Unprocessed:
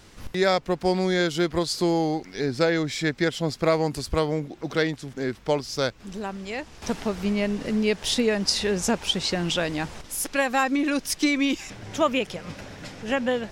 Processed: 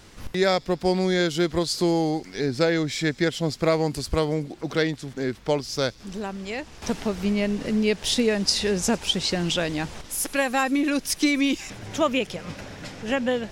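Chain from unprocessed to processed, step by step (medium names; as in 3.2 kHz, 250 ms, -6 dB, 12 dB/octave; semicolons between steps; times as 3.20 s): dynamic bell 1.1 kHz, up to -3 dB, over -35 dBFS, Q 0.72; on a send: feedback echo behind a high-pass 93 ms, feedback 81%, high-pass 4.6 kHz, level -21 dB; on the sum: trim +1.5 dB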